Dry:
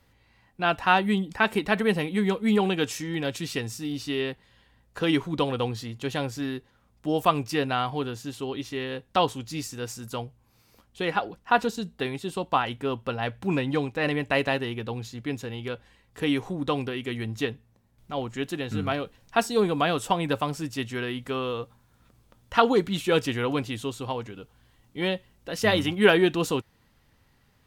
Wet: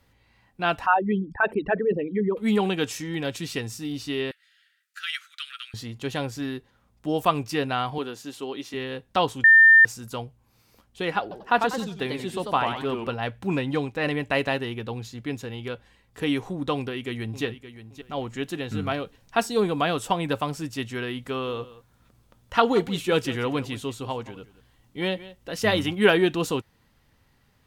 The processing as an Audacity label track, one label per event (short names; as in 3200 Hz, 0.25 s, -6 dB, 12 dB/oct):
0.860000	2.370000	formant sharpening exponent 3
4.310000	5.740000	steep high-pass 1300 Hz 96 dB/oct
7.980000	8.740000	HPF 240 Hz
9.440000	9.850000	bleep 1800 Hz -9.5 dBFS
11.210000	13.140000	warbling echo 93 ms, feedback 33%, depth 199 cents, level -5 dB
16.760000	17.440000	echo throw 0.57 s, feedback 25%, level -12.5 dB
21.280000	25.600000	echo 0.175 s -17 dB